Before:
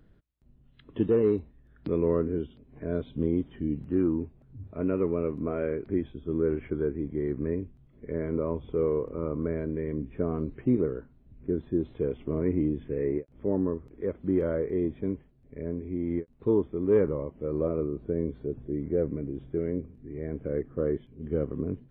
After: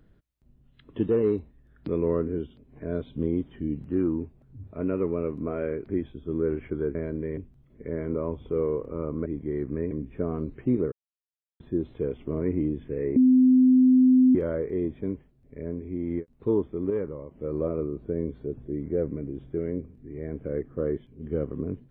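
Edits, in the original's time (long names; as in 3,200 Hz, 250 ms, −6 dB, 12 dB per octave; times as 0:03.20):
0:06.95–0:07.60: swap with 0:09.49–0:09.91
0:10.92–0:11.60: silence
0:13.16–0:14.35: beep over 256 Hz −14 dBFS
0:16.90–0:17.31: clip gain −6.5 dB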